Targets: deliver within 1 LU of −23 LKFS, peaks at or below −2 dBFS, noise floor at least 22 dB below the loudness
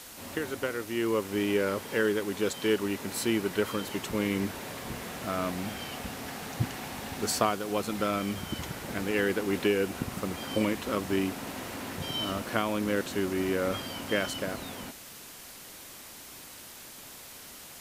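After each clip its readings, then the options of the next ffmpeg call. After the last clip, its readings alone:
background noise floor −47 dBFS; target noise floor −53 dBFS; integrated loudness −31.0 LKFS; sample peak −9.0 dBFS; target loudness −23.0 LKFS
→ -af "afftdn=noise_reduction=6:noise_floor=-47"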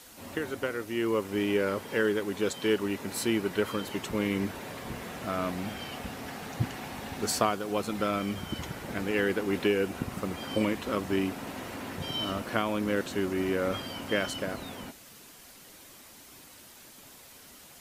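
background noise floor −52 dBFS; target noise floor −53 dBFS
→ -af "afftdn=noise_reduction=6:noise_floor=-52"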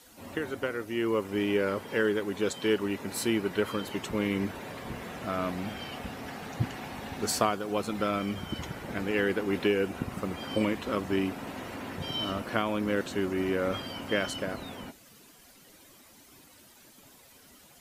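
background noise floor −56 dBFS; integrated loudness −31.5 LKFS; sample peak −9.0 dBFS; target loudness −23.0 LKFS
→ -af "volume=8.5dB,alimiter=limit=-2dB:level=0:latency=1"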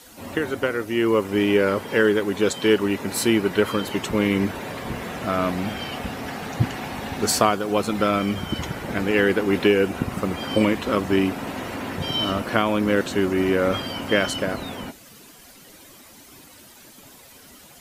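integrated loudness −23.0 LKFS; sample peak −2.0 dBFS; background noise floor −48 dBFS

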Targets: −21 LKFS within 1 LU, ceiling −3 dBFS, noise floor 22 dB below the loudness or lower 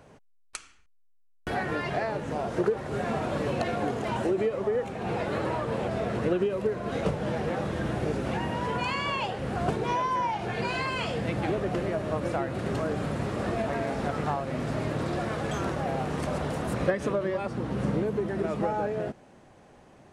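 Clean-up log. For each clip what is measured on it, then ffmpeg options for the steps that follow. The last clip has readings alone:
integrated loudness −29.5 LKFS; sample peak −14.0 dBFS; target loudness −21.0 LKFS
→ -af "volume=8.5dB"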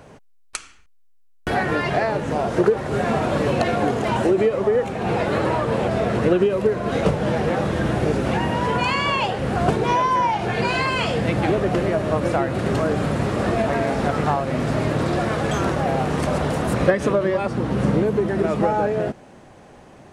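integrated loudness −21.0 LKFS; sample peak −5.5 dBFS; background noise floor −50 dBFS

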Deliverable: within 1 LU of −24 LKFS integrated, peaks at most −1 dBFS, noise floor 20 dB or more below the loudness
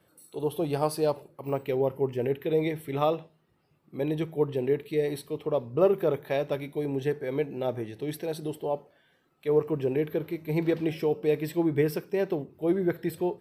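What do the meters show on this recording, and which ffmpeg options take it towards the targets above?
integrated loudness −29.0 LKFS; sample peak −11.0 dBFS; target loudness −24.0 LKFS
→ -af "volume=5dB"

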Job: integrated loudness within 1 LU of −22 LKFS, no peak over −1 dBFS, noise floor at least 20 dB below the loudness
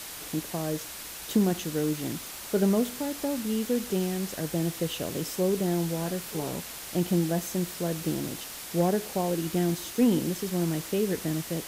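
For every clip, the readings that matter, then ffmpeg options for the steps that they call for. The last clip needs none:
background noise floor −40 dBFS; target noise floor −49 dBFS; integrated loudness −29.0 LKFS; sample peak −13.0 dBFS; target loudness −22.0 LKFS
→ -af "afftdn=noise_reduction=9:noise_floor=-40"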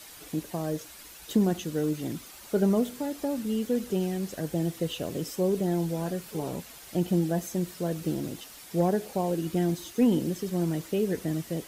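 background noise floor −48 dBFS; target noise floor −50 dBFS
→ -af "afftdn=noise_reduction=6:noise_floor=-48"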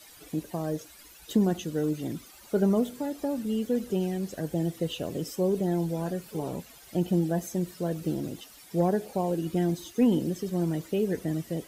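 background noise floor −52 dBFS; integrated loudness −29.5 LKFS; sample peak −13.5 dBFS; target loudness −22.0 LKFS
→ -af "volume=7.5dB"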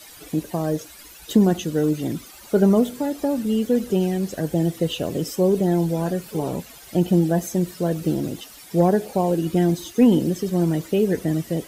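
integrated loudness −22.0 LKFS; sample peak −6.0 dBFS; background noise floor −44 dBFS

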